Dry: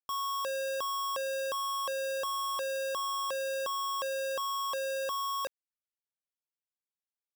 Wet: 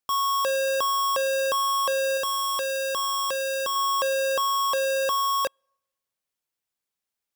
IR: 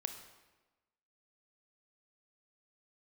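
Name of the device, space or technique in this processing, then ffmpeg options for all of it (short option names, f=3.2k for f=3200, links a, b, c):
keyed gated reverb: -filter_complex "[0:a]asettb=1/sr,asplit=3[a][b][c];[a]atrim=end=2.174[d];[b]atrim=start=2.17:end=3.76,asetpts=PTS-STARTPTS,afade=t=in:d=0.004:c=qsin,afade=t=out:st=1.586:d=0.004:c=qsin,equalizer=f=770:w=1.1:g=-5.5[e];[c]atrim=start=3.756[f];[d][e]acrossfade=d=0.004:c1=hsin:c2=qsin[g];[g][f]acrossfade=d=0.004:c1=qsin:c2=hsin,asplit=3[h][i][j];[1:a]atrim=start_sample=2205[k];[i][k]afir=irnorm=-1:irlink=0[l];[j]apad=whole_len=324571[m];[l][m]sidechaingate=range=-41dB:threshold=-33dB:ratio=16:detection=peak,volume=6.5dB[n];[h][n]amix=inputs=2:normalize=0,volume=8.5dB"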